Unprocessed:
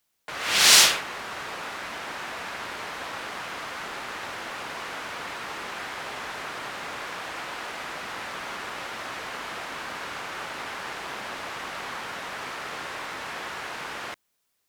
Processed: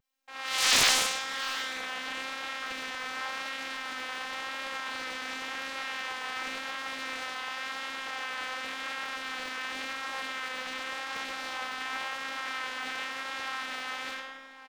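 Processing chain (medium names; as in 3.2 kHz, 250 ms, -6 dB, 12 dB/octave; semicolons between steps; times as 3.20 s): bass shelf 300 Hz -12 dB; feedback comb 68 Hz, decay 0.75 s, harmonics all, mix 80%; simulated room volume 890 m³, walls mixed, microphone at 3.7 m; level rider gain up to 4 dB; robot voice 263 Hz; hard clipper -4.5 dBFS, distortion -13 dB; peaking EQ 11 kHz -7.5 dB 1.4 oct; hum notches 50/100/150/200 Hz; delay 708 ms -14.5 dB; vibrato 0.92 Hz 30 cents; loudspeaker Doppler distortion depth 0.78 ms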